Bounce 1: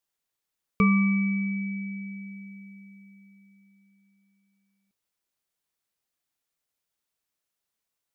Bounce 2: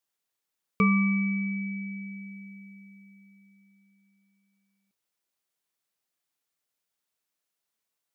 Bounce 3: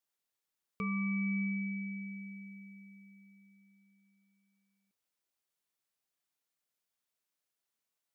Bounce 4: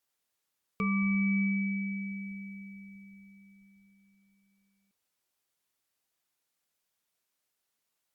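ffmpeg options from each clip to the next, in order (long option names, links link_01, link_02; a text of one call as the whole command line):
ffmpeg -i in.wav -af "lowshelf=frequency=91:gain=-10.5" out.wav
ffmpeg -i in.wav -af "alimiter=limit=-23.5dB:level=0:latency=1,volume=-4dB" out.wav
ffmpeg -i in.wav -af "volume=5.5dB" -ar 48000 -c:a libopus -b:a 64k out.opus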